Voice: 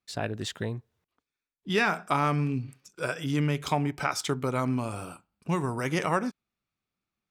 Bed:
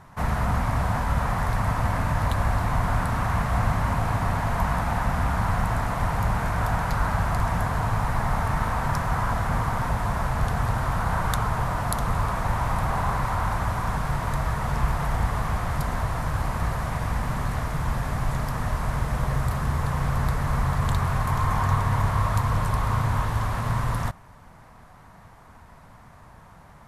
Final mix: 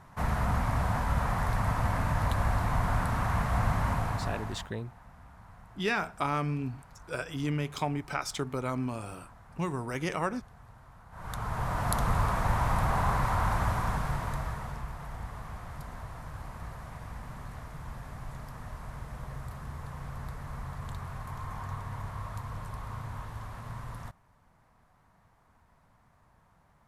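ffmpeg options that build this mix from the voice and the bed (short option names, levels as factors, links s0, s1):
-filter_complex "[0:a]adelay=4100,volume=0.596[s0];[1:a]volume=11.9,afade=t=out:st=3.89:d=0.82:silence=0.0630957,afade=t=in:st=11.11:d=0.84:silence=0.0501187,afade=t=out:st=13.67:d=1.18:silence=0.223872[s1];[s0][s1]amix=inputs=2:normalize=0"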